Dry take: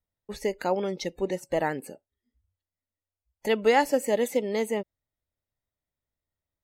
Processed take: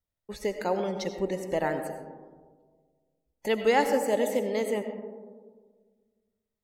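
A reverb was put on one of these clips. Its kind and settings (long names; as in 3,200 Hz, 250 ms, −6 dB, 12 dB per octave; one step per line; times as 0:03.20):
comb and all-pass reverb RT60 1.6 s, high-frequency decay 0.25×, pre-delay 50 ms, DRR 7 dB
level −2 dB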